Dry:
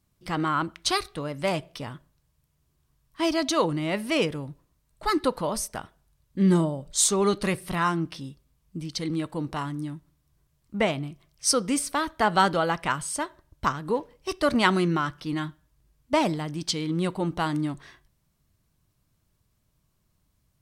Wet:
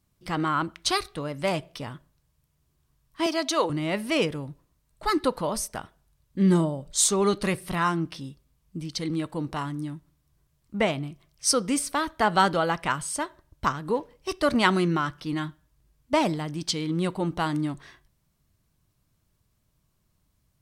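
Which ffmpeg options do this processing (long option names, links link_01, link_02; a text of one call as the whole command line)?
ffmpeg -i in.wav -filter_complex "[0:a]asettb=1/sr,asplit=3[link_01][link_02][link_03];[link_01]atrim=end=3.264[link_04];[link_02]atrim=start=3.26:end=3.7,asetpts=PTS-STARTPTS,afade=type=in:duration=0.004:curve=qsin,afade=type=out:start_time=0.436:duration=0.004:curve=qsin,highpass=340[link_05];[link_03]atrim=start=3.696[link_06];[link_04][link_05]acrossfade=duration=0.004:curve1=hsin:curve2=qsin[link_07];[link_07][link_06]acrossfade=duration=0.004:curve1=qsin:curve2=hsin" out.wav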